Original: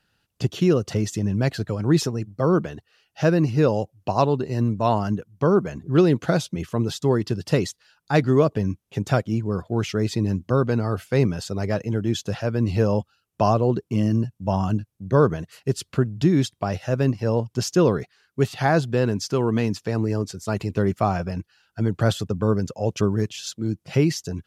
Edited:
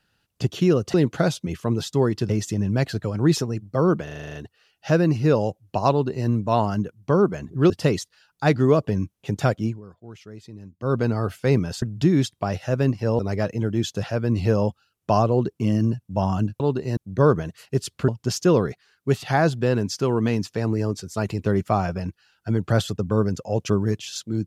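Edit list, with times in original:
2.68 stutter 0.04 s, 9 plays
4.24–4.61 copy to 14.91
6.03–7.38 move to 0.94
9.33–10.63 dip -18 dB, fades 0.16 s
16.02–17.39 move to 11.5

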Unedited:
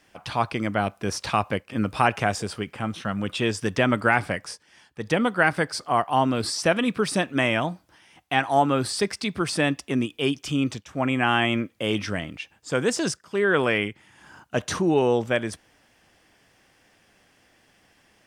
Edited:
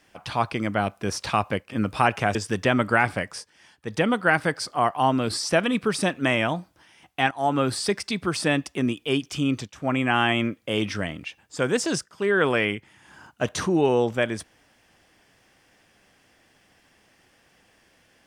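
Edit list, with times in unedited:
2.35–3.48 cut
8.44–8.71 fade in, from -15.5 dB

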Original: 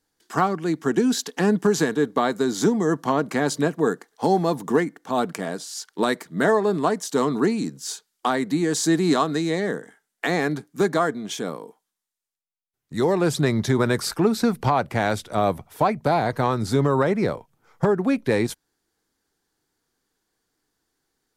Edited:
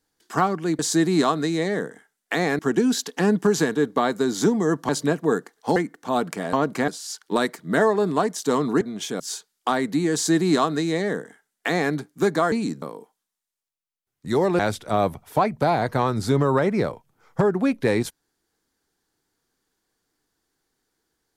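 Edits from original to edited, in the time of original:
3.09–3.44 move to 5.55
4.31–4.78 cut
7.48–7.78 swap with 11.1–11.49
8.71–10.51 copy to 0.79
13.26–15.03 cut

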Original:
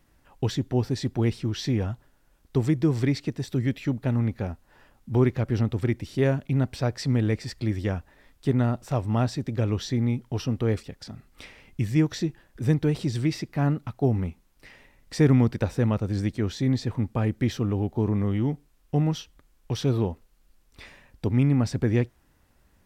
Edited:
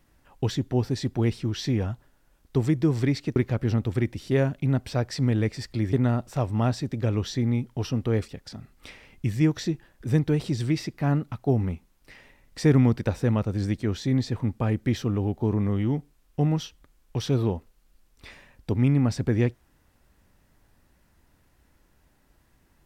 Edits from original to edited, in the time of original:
3.36–5.23 cut
7.8–8.48 cut

